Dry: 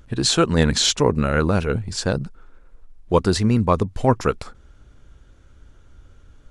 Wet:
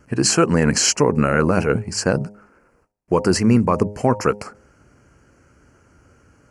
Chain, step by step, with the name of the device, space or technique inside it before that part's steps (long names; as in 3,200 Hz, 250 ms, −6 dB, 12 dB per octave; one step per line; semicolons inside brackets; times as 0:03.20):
PA system with an anti-feedback notch (high-pass filter 130 Hz 12 dB per octave; Butterworth band-reject 3,600 Hz, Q 2; brickwall limiter −9 dBFS, peak gain reduction 6.5 dB)
noise gate with hold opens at −55 dBFS
hum removal 103.4 Hz, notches 9
level +5 dB